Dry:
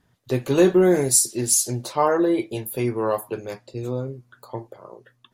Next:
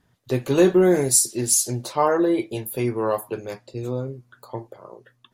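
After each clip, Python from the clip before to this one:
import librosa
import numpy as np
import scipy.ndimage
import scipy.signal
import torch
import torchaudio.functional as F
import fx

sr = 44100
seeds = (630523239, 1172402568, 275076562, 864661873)

y = x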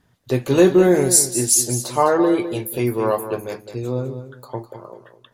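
y = fx.echo_feedback(x, sr, ms=206, feedback_pct=18, wet_db=-11.0)
y = F.gain(torch.from_numpy(y), 3.0).numpy()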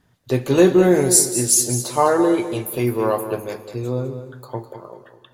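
y = fx.rev_plate(x, sr, seeds[0], rt60_s=2.4, hf_ratio=0.95, predelay_ms=0, drr_db=14.5)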